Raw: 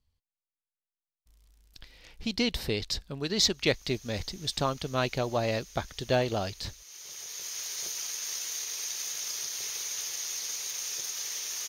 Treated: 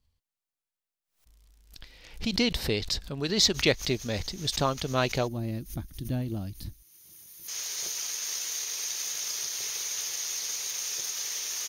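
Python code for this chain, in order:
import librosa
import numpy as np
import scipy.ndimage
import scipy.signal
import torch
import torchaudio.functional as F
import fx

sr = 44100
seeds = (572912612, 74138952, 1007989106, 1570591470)

y = fx.spec_box(x, sr, start_s=5.28, length_s=2.2, low_hz=350.0, high_hz=8900.0, gain_db=-18)
y = fx.pre_swell(y, sr, db_per_s=140.0)
y = y * librosa.db_to_amplitude(2.0)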